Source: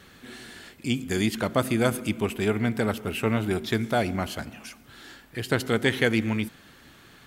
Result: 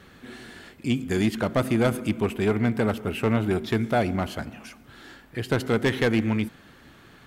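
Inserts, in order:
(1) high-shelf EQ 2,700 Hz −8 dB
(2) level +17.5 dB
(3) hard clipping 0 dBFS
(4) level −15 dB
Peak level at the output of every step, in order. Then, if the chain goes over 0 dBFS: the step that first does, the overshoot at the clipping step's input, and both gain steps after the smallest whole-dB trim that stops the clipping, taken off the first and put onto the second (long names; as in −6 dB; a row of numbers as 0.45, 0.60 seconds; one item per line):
−9.0, +8.5, 0.0, −15.0 dBFS
step 2, 8.5 dB
step 2 +8.5 dB, step 4 −6 dB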